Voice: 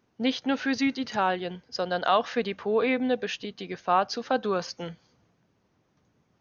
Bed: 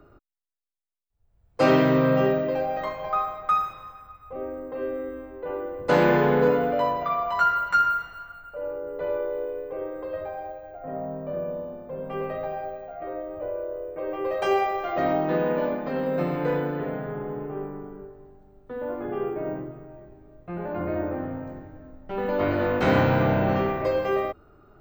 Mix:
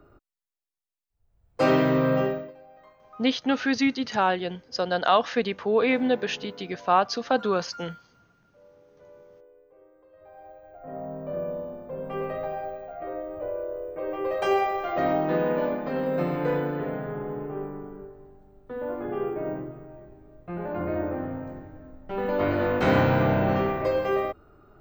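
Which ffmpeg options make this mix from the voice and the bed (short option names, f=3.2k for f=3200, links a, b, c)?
-filter_complex "[0:a]adelay=3000,volume=2.5dB[a];[1:a]volume=21dB,afade=t=out:st=2.18:d=0.35:silence=0.0841395,afade=t=in:st=10.16:d=1.25:silence=0.0707946[b];[a][b]amix=inputs=2:normalize=0"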